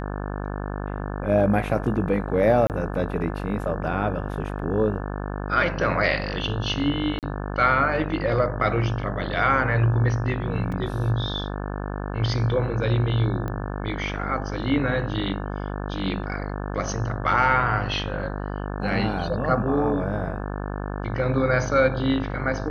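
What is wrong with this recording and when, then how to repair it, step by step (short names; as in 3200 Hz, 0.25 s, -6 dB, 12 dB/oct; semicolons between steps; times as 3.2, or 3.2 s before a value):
buzz 50 Hz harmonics 35 -30 dBFS
2.67–2.7 gap 28 ms
7.19–7.23 gap 38 ms
10.72 gap 4.1 ms
13.48 pop -19 dBFS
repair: de-click; de-hum 50 Hz, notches 35; interpolate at 2.67, 28 ms; interpolate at 7.19, 38 ms; interpolate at 10.72, 4.1 ms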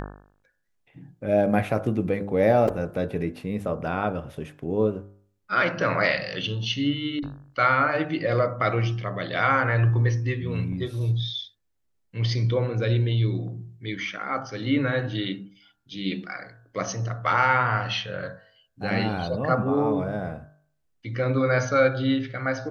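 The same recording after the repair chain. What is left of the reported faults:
none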